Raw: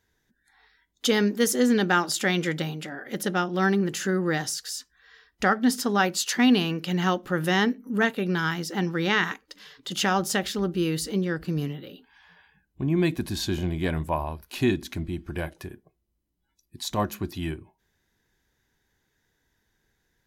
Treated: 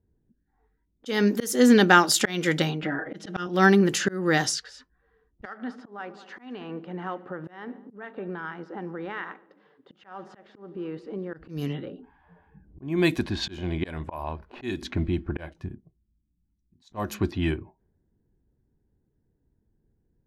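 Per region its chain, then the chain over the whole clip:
0:02.82–0:03.47: low-pass filter 7,100 Hz + comb filter 6.3 ms, depth 90%
0:05.45–0:11.34: meter weighting curve A + downward compressor 2.5 to 1, threshold −37 dBFS + echo machine with several playback heads 73 ms, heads all three, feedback 40%, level −22 dB
0:11.88–0:14.82: low-shelf EQ 370 Hz −4.5 dB + upward compression, threshold −39 dBFS
0:15.52–0:16.92: drawn EQ curve 230 Hz 0 dB, 440 Hz −13 dB, 1,600 Hz −6 dB, 6,700 Hz +13 dB + downward compressor, threshold −31 dBFS
whole clip: low-pass that shuts in the quiet parts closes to 330 Hz, open at −23 dBFS; dynamic equaliser 160 Hz, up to −3 dB, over −41 dBFS, Q 2.4; volume swells 289 ms; level +6 dB

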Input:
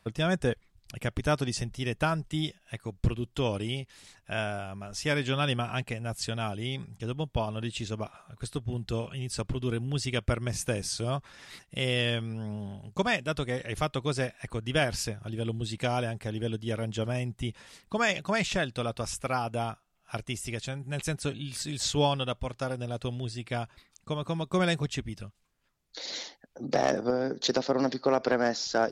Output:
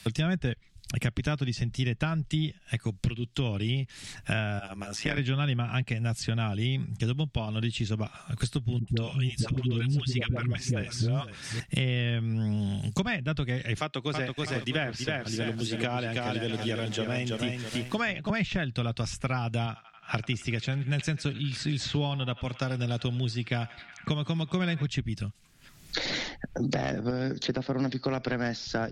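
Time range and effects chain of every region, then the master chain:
0:04.59–0:05.18: high-pass filter 250 Hz + amplitude modulation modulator 110 Hz, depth 85%
0:08.79–0:11.60: high-pass filter 44 Hz + all-pass dispersion highs, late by 87 ms, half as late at 520 Hz + single-tap delay 508 ms −17.5 dB
0:13.77–0:18.30: high-pass filter 290 Hz + feedback echo at a low word length 326 ms, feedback 35%, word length 9 bits, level −4 dB
0:19.66–0:24.87: low-pass that shuts in the quiet parts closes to 2,200 Hz, open at −25 dBFS + high-pass filter 160 Hz 6 dB per octave + feedback echo with a band-pass in the loop 91 ms, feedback 77%, band-pass 1,700 Hz, level −16 dB
whole clip: treble cut that deepens with the level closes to 2,900 Hz, closed at −25.5 dBFS; octave-band graphic EQ 125/500/1,000 Hz +4/−7/−7 dB; multiband upward and downward compressor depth 100%; level +2 dB

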